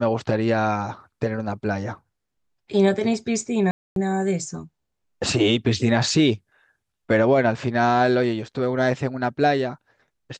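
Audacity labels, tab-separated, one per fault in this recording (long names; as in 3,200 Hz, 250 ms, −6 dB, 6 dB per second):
3.710000	3.960000	drop-out 252 ms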